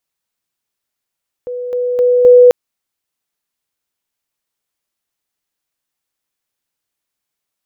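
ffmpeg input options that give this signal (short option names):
-f lavfi -i "aevalsrc='pow(10,(-20+6*floor(t/0.26))/20)*sin(2*PI*493*t)':d=1.04:s=44100"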